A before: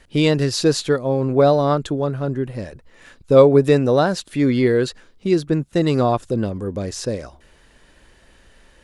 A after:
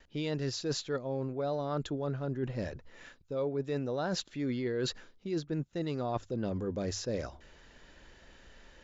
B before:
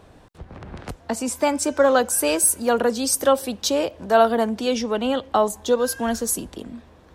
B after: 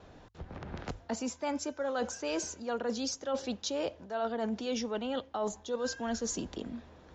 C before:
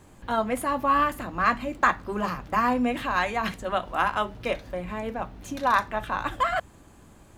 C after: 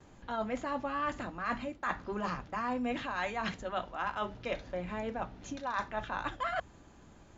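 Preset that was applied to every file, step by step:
band-stop 1.1 kHz, Q 18; gate with hold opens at -48 dBFS; Chebyshev low-pass 7.3 kHz, order 10; hum notches 50/100 Hz; reverse; compression 10:1, threshold -27 dBFS; reverse; trim -3.5 dB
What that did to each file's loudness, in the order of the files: -16.5 LU, -14.5 LU, -10.0 LU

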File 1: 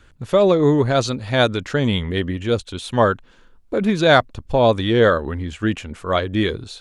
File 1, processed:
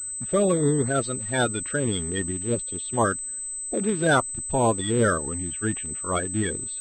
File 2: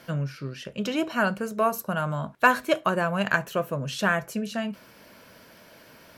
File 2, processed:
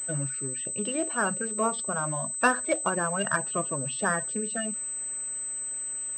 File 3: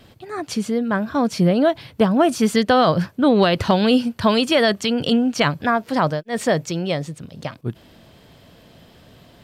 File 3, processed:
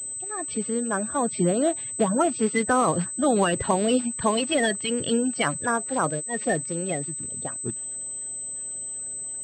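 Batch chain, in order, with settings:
coarse spectral quantiser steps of 30 dB; class-D stage that switches slowly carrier 8.1 kHz; peak normalisation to -9 dBFS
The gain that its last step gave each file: -6.0 dB, -3.0 dB, -5.5 dB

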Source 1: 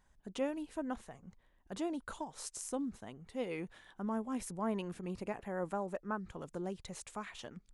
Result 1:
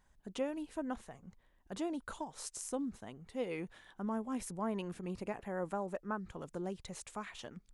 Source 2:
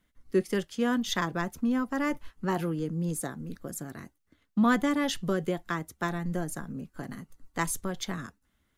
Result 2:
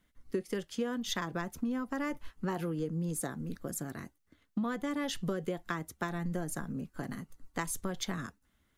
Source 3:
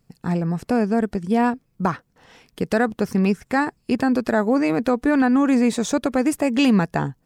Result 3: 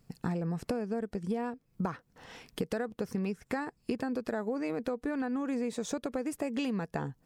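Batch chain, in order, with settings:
dynamic bell 480 Hz, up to +6 dB, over -39 dBFS, Q 4.6; compression 12:1, threshold -30 dBFS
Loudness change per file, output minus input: -0.5 LU, -6.0 LU, -14.0 LU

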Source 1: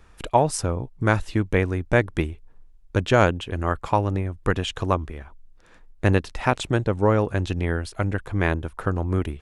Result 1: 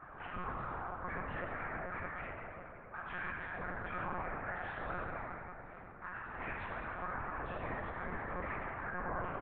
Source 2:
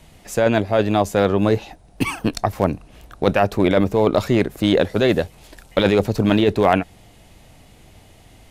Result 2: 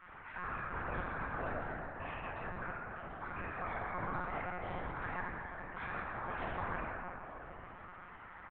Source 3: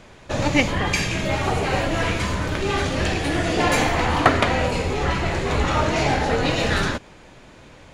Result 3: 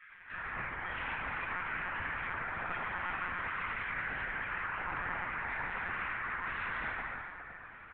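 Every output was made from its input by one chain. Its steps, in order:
low-pass 1.1 kHz 24 dB/octave; reverb removal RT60 1.1 s; spectral gate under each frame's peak -30 dB weak; comb 7.1 ms, depth 34%; dynamic bell 680 Hz, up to -4 dB, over -57 dBFS, Q 0.76; compression, threshold -58 dBFS; peak limiter -54.5 dBFS; plate-style reverb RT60 3.3 s, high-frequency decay 0.5×, DRR -8 dB; monotone LPC vocoder at 8 kHz 180 Hz; trim +17.5 dB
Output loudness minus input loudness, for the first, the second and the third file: -18.0 LU, -23.0 LU, -15.5 LU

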